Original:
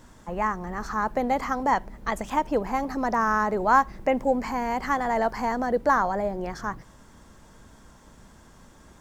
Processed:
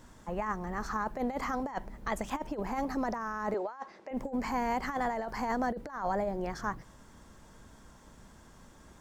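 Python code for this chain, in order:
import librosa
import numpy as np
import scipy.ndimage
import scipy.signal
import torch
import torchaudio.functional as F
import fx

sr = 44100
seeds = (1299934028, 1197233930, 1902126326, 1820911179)

y = fx.cheby1_bandpass(x, sr, low_hz=440.0, high_hz=5400.0, order=2, at=(3.54, 4.11))
y = fx.over_compress(y, sr, threshold_db=-26.0, ratio=-0.5)
y = y * librosa.db_to_amplitude(-6.0)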